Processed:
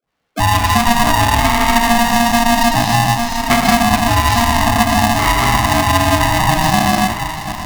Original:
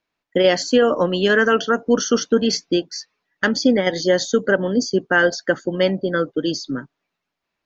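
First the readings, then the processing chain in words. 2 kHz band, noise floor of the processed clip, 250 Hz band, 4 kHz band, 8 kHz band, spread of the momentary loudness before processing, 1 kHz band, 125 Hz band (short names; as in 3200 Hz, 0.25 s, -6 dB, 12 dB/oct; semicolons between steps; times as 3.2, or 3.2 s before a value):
+5.0 dB, -27 dBFS, +4.0 dB, +7.0 dB, n/a, 8 LU, +16.0 dB, +14.0 dB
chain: in parallel at -4.5 dB: soft clip -16 dBFS, distortion -10 dB; on the sum: high shelf 2900 Hz -9.5 dB; swung echo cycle 0.974 s, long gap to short 3:1, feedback 44%, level -14.5 dB; non-linear reverb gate 0.35 s flat, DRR -4.5 dB; dynamic EQ 230 Hz, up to +5 dB, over -20 dBFS, Q 1.2; compressor, threshold -11 dBFS, peak gain reduction 10.5 dB; limiter -8 dBFS, peak gain reduction 5 dB; dispersion highs, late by 82 ms, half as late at 390 Hz; polarity switched at an audio rate 470 Hz; gain +3 dB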